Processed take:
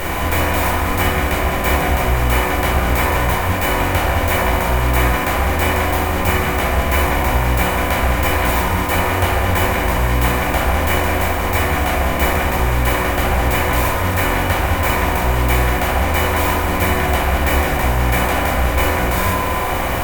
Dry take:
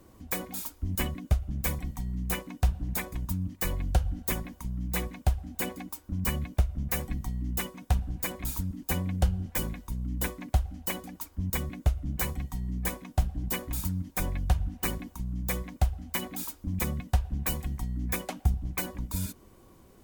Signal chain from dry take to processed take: per-bin compression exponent 0.2; tone controls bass -13 dB, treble -8 dB; on a send: band-limited delay 70 ms, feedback 76%, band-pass 800 Hz, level -5 dB; on the sum: shoebox room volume 550 m³, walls furnished, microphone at 4.5 m; gain +4 dB

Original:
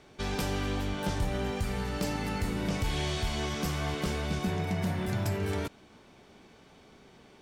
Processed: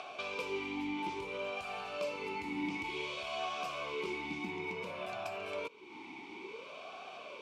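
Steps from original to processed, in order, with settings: tilt shelf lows -7 dB, about 1100 Hz; upward compressor, threshold -27 dBFS; vowel sweep a-u 0.57 Hz; gain +7 dB

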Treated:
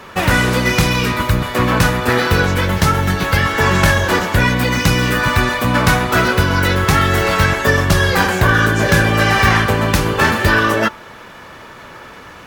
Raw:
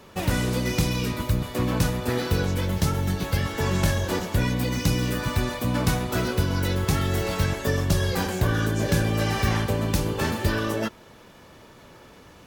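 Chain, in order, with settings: bell 1500 Hz +10.5 dB 2 oct; de-hum 292.1 Hz, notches 5; wavefolder -10.5 dBFS; gain +7.5 dB

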